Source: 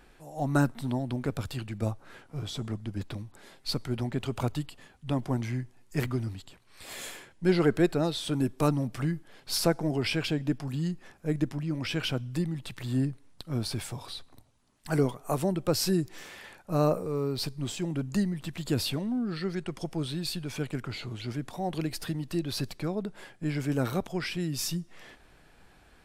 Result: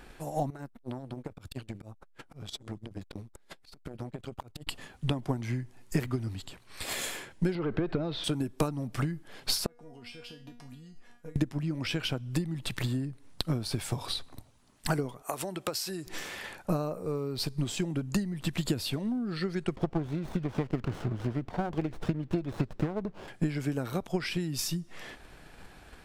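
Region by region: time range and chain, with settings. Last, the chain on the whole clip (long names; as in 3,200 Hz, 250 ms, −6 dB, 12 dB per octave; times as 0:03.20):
0:00.50–0:04.67: downward compressor 3 to 1, threshold −45 dBFS + volume swells 138 ms + saturating transformer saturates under 590 Hz
0:07.55–0:08.24: leveller curve on the samples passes 2 + downward compressor, threshold −22 dBFS + high-frequency loss of the air 290 metres
0:09.66–0:11.36: downward compressor 10 to 1, threshold −35 dBFS + tuned comb filter 240 Hz, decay 0.38 s, mix 90%
0:15.22–0:16.07: low-shelf EQ 500 Hz −10 dB + downward compressor 5 to 1, threshold −37 dBFS + high-pass filter 180 Hz 6 dB per octave
0:19.76–0:23.28: low-pass filter 2,800 Hz + windowed peak hold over 17 samples
whole clip: downward compressor 6 to 1, threshold −36 dBFS; transient designer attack +7 dB, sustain 0 dB; level +5.5 dB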